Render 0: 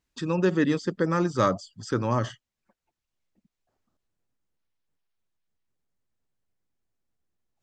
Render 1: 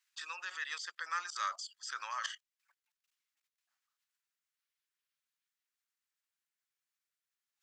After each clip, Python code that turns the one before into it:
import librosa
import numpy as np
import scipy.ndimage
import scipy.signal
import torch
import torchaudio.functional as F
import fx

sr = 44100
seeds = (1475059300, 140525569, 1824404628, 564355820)

y = fx.level_steps(x, sr, step_db=17)
y = scipy.signal.sosfilt(scipy.signal.butter(4, 1300.0, 'highpass', fs=sr, output='sos'), y)
y = y * 10.0 ** (8.0 / 20.0)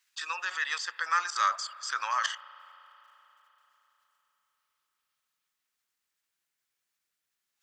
y = fx.dynamic_eq(x, sr, hz=900.0, q=0.73, threshold_db=-49.0, ratio=4.0, max_db=4)
y = fx.rev_spring(y, sr, rt60_s=4.0, pass_ms=(33,), chirp_ms=50, drr_db=17.5)
y = y * 10.0 ** (7.0 / 20.0)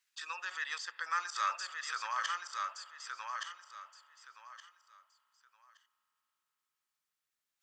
y = fx.echo_feedback(x, sr, ms=1170, feedback_pct=24, wet_db=-4.5)
y = y * 10.0 ** (-7.0 / 20.0)